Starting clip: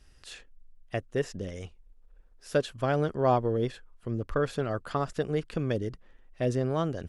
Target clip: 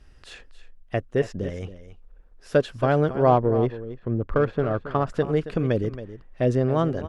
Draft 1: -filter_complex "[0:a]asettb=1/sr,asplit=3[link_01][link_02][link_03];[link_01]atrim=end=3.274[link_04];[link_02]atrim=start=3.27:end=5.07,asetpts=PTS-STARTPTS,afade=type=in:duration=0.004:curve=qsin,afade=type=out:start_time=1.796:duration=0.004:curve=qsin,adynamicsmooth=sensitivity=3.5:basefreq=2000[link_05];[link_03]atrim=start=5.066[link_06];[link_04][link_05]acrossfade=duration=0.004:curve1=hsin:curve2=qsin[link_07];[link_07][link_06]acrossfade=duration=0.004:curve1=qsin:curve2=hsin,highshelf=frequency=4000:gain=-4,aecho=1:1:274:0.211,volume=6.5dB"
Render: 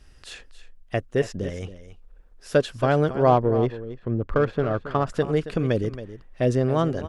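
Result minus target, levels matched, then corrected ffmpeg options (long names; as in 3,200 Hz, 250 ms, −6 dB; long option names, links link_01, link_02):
8,000 Hz band +6.5 dB
-filter_complex "[0:a]asettb=1/sr,asplit=3[link_01][link_02][link_03];[link_01]atrim=end=3.274[link_04];[link_02]atrim=start=3.27:end=5.07,asetpts=PTS-STARTPTS,afade=type=in:duration=0.004:curve=qsin,afade=type=out:start_time=1.796:duration=0.004:curve=qsin,adynamicsmooth=sensitivity=3.5:basefreq=2000[link_05];[link_03]atrim=start=5.066[link_06];[link_04][link_05]acrossfade=duration=0.004:curve1=hsin:curve2=qsin[link_07];[link_07][link_06]acrossfade=duration=0.004:curve1=qsin:curve2=hsin,highshelf=frequency=4000:gain=-12.5,aecho=1:1:274:0.211,volume=6.5dB"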